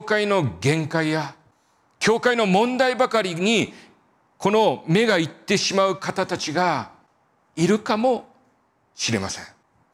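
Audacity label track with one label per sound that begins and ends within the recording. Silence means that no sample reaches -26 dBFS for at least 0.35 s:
2.020000	3.650000	sound
4.420000	6.830000	sound
7.580000	8.170000	sound
9.000000	9.430000	sound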